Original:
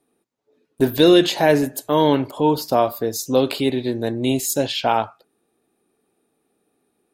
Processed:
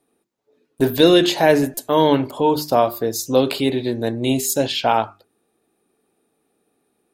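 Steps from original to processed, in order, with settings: notches 50/100/150/200/250/300/350/400 Hz; stuck buffer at 1.74, samples 128, times 10; gain +1.5 dB

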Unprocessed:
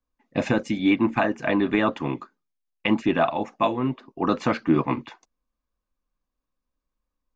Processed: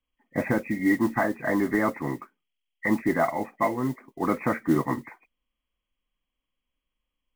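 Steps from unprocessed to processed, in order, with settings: nonlinear frequency compression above 1800 Hz 4:1; modulation noise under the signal 25 dB; gain -2.5 dB

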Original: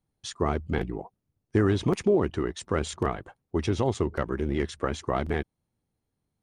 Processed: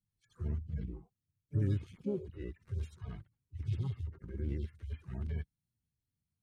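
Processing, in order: median-filter separation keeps harmonic; harmoniser +5 st -9 dB; passive tone stack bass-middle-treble 6-0-2; gain +9.5 dB

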